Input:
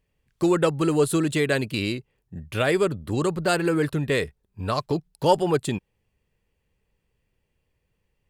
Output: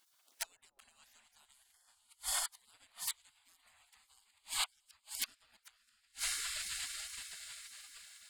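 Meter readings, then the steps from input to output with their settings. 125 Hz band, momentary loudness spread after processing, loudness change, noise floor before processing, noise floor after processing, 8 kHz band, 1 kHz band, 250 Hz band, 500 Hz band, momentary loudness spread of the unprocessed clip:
under -40 dB, 14 LU, -15.5 dB, -76 dBFS, -76 dBFS, -1.5 dB, -22.5 dB, under -40 dB, under -40 dB, 12 LU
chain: echo that smears into a reverb 584 ms, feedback 46%, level -7 dB; inverted gate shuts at -19 dBFS, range -41 dB; spectral gate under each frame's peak -30 dB weak; trim +15.5 dB

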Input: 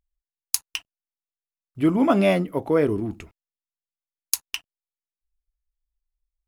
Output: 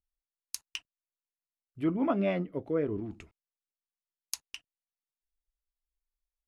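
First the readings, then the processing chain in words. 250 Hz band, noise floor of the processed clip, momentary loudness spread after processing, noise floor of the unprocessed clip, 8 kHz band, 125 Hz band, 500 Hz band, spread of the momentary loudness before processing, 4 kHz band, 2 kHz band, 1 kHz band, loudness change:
-9.5 dB, under -85 dBFS, 16 LU, under -85 dBFS, -13.0 dB, -9.5 dB, -10.0 dB, 16 LU, -11.0 dB, -11.5 dB, -11.0 dB, -10.5 dB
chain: rotary cabinet horn 7.5 Hz, later 1 Hz, at 1.59 s; low-pass that closes with the level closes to 2.7 kHz, closed at -20 dBFS; trim -8 dB

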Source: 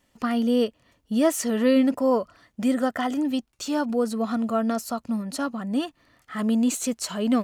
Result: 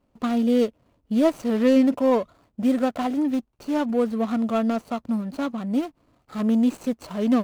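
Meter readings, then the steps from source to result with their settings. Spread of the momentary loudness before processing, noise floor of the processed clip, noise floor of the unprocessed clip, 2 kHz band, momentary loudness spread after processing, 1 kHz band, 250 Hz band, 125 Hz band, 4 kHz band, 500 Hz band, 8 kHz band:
8 LU, -69 dBFS, -69 dBFS, -2.5 dB, 9 LU, 0.0 dB, +2.0 dB, no reading, -4.5 dB, +1.5 dB, under -10 dB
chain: median filter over 25 samples; trim +2 dB

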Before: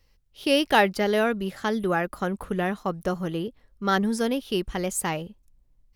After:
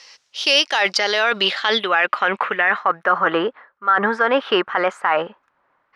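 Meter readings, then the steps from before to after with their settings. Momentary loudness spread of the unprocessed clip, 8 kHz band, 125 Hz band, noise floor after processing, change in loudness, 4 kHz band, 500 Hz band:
11 LU, no reading, -8.0 dB, -67 dBFS, +7.5 dB, +12.5 dB, +4.5 dB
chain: high-pass 950 Hz 12 dB/octave; treble shelf 6.7 kHz -8 dB; low-pass sweep 6 kHz -> 1.4 kHz, 0.80–3.30 s; reverse; compression 16:1, threshold -35 dBFS, peak gain reduction 20.5 dB; reverse; loudness maximiser +31 dB; trim -5 dB

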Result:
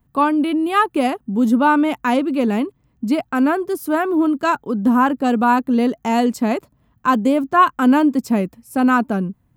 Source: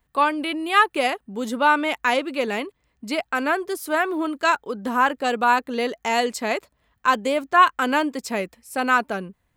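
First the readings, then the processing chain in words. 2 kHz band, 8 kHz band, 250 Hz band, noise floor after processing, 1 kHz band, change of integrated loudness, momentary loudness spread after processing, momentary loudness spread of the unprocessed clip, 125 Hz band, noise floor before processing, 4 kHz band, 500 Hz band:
-2.5 dB, -2.0 dB, +12.0 dB, -63 dBFS, +2.0 dB, +4.0 dB, 7 LU, 11 LU, no reading, -71 dBFS, -4.0 dB, +3.0 dB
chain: ten-band graphic EQ 125 Hz +10 dB, 250 Hz +8 dB, 500 Hz -4 dB, 2 kHz -8 dB, 4 kHz -7 dB, 8 kHz -6 dB; trim +4.5 dB

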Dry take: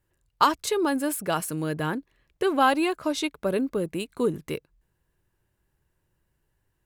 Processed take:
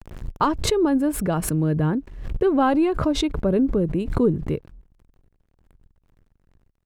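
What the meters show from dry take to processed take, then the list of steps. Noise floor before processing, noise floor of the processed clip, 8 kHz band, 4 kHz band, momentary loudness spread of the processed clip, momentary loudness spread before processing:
-75 dBFS, -69 dBFS, +1.5 dB, +1.0 dB, 9 LU, 10 LU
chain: bit crusher 11-bit; tilt EQ -4.5 dB/octave; swell ahead of each attack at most 64 dB/s; trim -1.5 dB

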